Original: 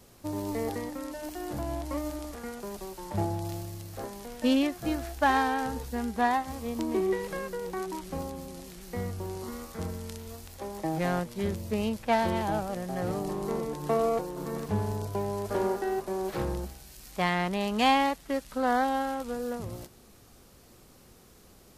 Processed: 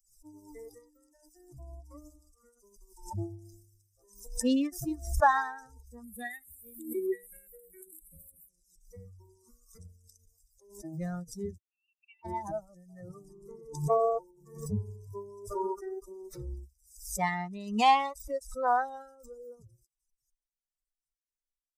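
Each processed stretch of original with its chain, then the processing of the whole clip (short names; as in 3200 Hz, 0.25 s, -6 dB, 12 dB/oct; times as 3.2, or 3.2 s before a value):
6.04–8.49 high shelf 3700 Hz +10.5 dB + fixed phaser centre 2400 Hz, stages 4
11.58–12.25 compressor 16:1, threshold -30 dBFS + band-pass 2700 Hz, Q 9.1
whole clip: per-bin expansion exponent 3; dynamic EQ 950 Hz, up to +7 dB, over -47 dBFS, Q 1.3; backwards sustainer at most 100 dB/s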